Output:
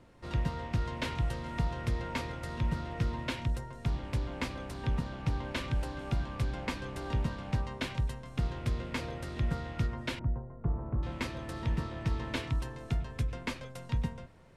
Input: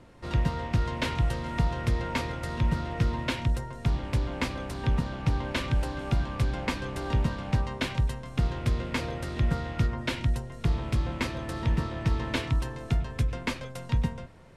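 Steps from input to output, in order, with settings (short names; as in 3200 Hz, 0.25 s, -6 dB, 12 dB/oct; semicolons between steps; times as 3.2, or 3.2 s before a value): 10.19–11.03 LPF 1200 Hz 24 dB/oct; gain -5.5 dB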